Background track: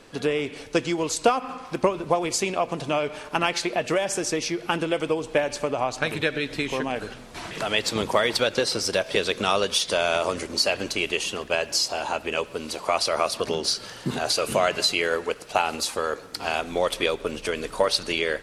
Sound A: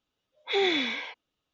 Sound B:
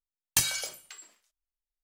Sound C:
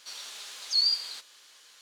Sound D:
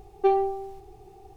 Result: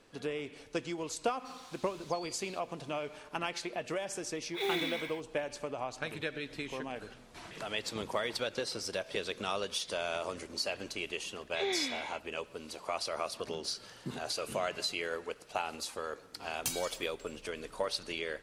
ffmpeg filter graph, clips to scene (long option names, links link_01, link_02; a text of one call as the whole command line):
ffmpeg -i bed.wav -i cue0.wav -i cue1.wav -i cue2.wav -filter_complex "[1:a]asplit=2[link_01][link_02];[0:a]volume=-12.5dB[link_03];[3:a]acompressor=threshold=-35dB:ratio=6:attack=3.2:release=140:knee=1:detection=peak[link_04];[link_01]acrusher=bits=4:mode=log:mix=0:aa=0.000001[link_05];[2:a]bandreject=frequency=1800:width=5.9[link_06];[link_04]atrim=end=1.81,asetpts=PTS-STARTPTS,volume=-13.5dB,afade=type=in:duration=0.004:curve=hsin,afade=type=out:start_time=1.806:duration=0.004:curve=hsin,adelay=1390[link_07];[link_05]atrim=end=1.53,asetpts=PTS-STARTPTS,volume=-8.5dB,afade=type=in:duration=0.004:curve=hsin,afade=type=out:start_time=1.526:duration=0.004:curve=hsin,adelay=4070[link_08];[link_02]atrim=end=1.53,asetpts=PTS-STARTPTS,volume=-9dB,afade=type=in:duration=0.004:curve=hsin,afade=type=out:start_time=1.526:duration=0.004:curve=hsin,adelay=487746S[link_09];[link_06]atrim=end=1.83,asetpts=PTS-STARTPTS,volume=-10.5dB,afade=type=in:duration=0.004:curve=hsin,afade=type=out:start_time=1.826:duration=0.004:curve=hsin,adelay=16290[link_10];[link_03][link_07][link_08][link_09][link_10]amix=inputs=5:normalize=0" out.wav